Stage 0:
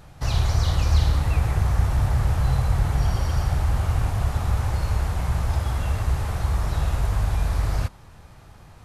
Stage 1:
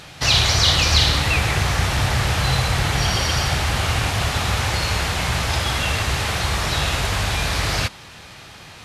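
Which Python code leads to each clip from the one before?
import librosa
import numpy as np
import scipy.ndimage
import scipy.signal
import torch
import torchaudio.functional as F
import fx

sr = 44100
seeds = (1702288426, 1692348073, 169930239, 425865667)

y = fx.weighting(x, sr, curve='D')
y = y * librosa.db_to_amplitude(8.0)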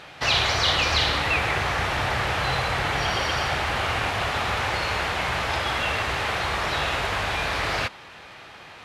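y = fx.bass_treble(x, sr, bass_db=-11, treble_db=-13)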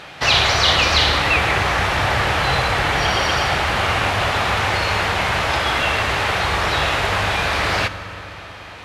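y = fx.rev_fdn(x, sr, rt60_s=4.0, lf_ratio=1.0, hf_ratio=0.5, size_ms=31.0, drr_db=11.5)
y = y * librosa.db_to_amplitude(6.0)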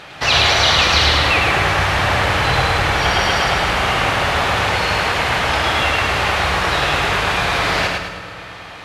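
y = fx.echo_feedback(x, sr, ms=106, feedback_pct=45, wet_db=-3.0)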